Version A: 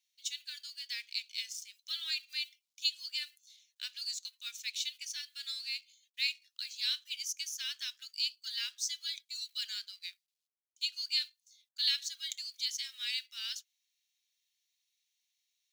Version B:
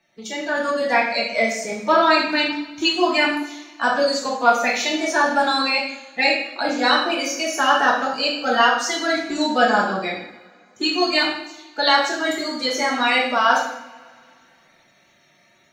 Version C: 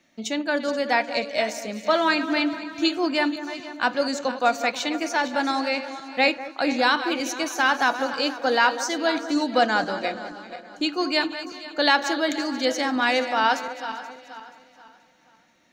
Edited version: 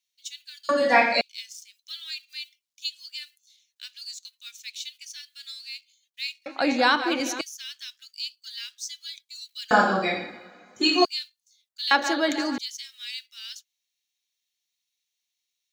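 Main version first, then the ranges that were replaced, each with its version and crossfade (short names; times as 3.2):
A
0.69–1.21 from B
6.46–7.41 from C
9.71–11.05 from B
11.91–12.58 from C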